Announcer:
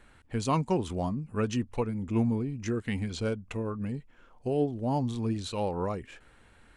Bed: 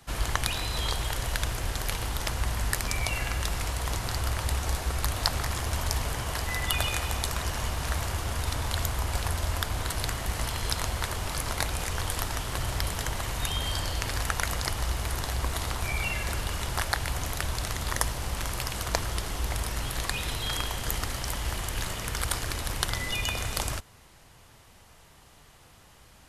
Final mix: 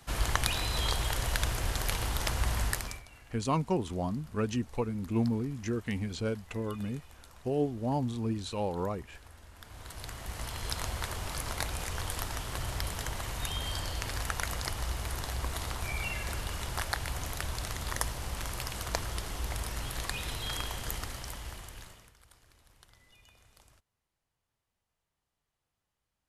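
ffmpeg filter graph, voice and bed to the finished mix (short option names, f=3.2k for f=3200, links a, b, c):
-filter_complex "[0:a]adelay=3000,volume=-2dB[a];[1:a]volume=19dB,afade=t=out:st=2.61:d=0.42:silence=0.0630957,afade=t=in:st=9.54:d=1.32:silence=0.1,afade=t=out:st=20.74:d=1.4:silence=0.0501187[b];[a][b]amix=inputs=2:normalize=0"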